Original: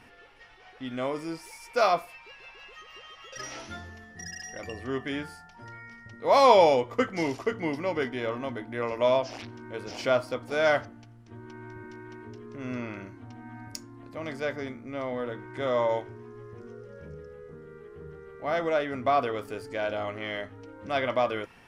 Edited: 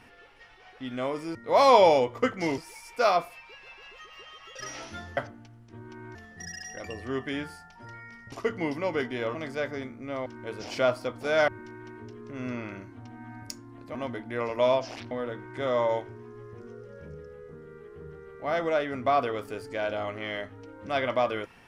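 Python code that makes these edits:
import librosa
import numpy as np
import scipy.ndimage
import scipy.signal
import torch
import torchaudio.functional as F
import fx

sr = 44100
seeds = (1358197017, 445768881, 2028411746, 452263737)

y = fx.edit(x, sr, fx.move(start_s=6.11, length_s=1.23, to_s=1.35),
    fx.swap(start_s=8.37, length_s=1.16, other_s=14.2, other_length_s=0.91),
    fx.move(start_s=10.75, length_s=0.98, to_s=3.94), tone=tone)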